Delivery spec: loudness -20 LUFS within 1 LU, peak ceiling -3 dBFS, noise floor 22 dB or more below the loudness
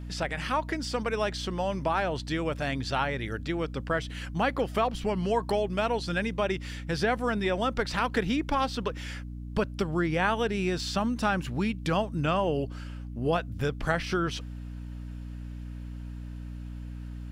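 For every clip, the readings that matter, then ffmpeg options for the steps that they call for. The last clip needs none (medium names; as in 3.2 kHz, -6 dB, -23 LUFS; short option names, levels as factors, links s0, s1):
hum 60 Hz; highest harmonic 300 Hz; hum level -36 dBFS; loudness -29.5 LUFS; peak level -12.5 dBFS; loudness target -20.0 LUFS
-> -af "bandreject=f=60:t=h:w=6,bandreject=f=120:t=h:w=6,bandreject=f=180:t=h:w=6,bandreject=f=240:t=h:w=6,bandreject=f=300:t=h:w=6"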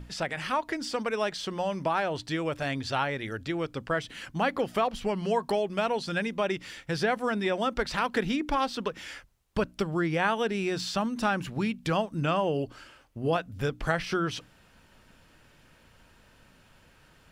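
hum not found; loudness -29.5 LUFS; peak level -11.5 dBFS; loudness target -20.0 LUFS
-> -af "volume=2.99,alimiter=limit=0.708:level=0:latency=1"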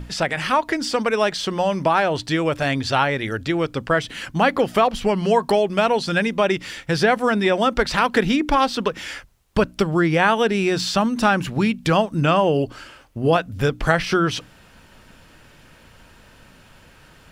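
loudness -20.0 LUFS; peak level -3.0 dBFS; noise floor -50 dBFS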